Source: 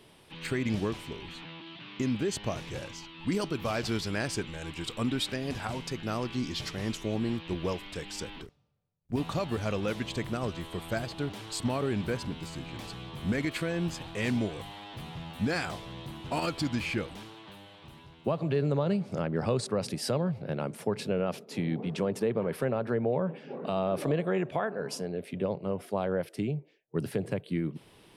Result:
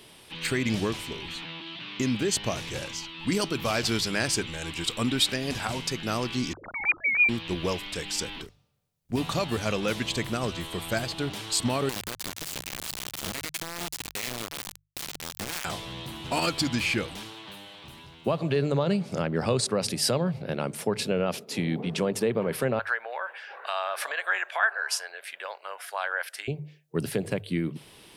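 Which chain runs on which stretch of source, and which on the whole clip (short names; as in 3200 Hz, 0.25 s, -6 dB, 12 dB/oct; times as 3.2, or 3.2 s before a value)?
6.53–7.29 sine-wave speech + inverted band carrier 2700 Hz
11.89–15.65 compressor 12:1, threshold -37 dBFS + requantised 6-bit, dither none
22.79–26.48 HPF 770 Hz 24 dB/oct + bell 1600 Hz +11.5 dB 0.53 oct
whole clip: high shelf 2100 Hz +8.5 dB; notches 50/100/150 Hz; gain +2.5 dB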